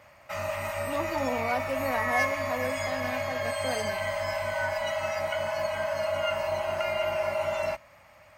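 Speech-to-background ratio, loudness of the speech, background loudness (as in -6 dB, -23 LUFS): -4.5 dB, -34.5 LUFS, -30.0 LUFS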